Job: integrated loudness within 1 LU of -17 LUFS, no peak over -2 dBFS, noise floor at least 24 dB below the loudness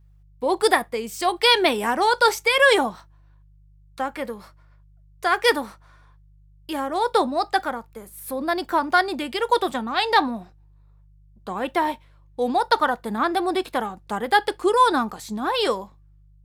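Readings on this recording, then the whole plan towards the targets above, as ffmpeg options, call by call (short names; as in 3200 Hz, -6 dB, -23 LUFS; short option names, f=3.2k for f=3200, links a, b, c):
hum 50 Hz; harmonics up to 150 Hz; hum level -50 dBFS; loudness -22.0 LUFS; peak -4.0 dBFS; loudness target -17.0 LUFS
-> -af "bandreject=f=50:t=h:w=4,bandreject=f=100:t=h:w=4,bandreject=f=150:t=h:w=4"
-af "volume=5dB,alimiter=limit=-2dB:level=0:latency=1"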